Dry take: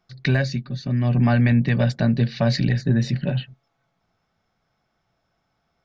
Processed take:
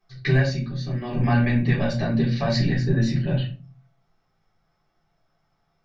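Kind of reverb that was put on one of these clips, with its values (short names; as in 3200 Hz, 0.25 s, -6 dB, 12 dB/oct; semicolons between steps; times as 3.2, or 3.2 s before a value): shoebox room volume 170 m³, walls furnished, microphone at 3.9 m; gain -8.5 dB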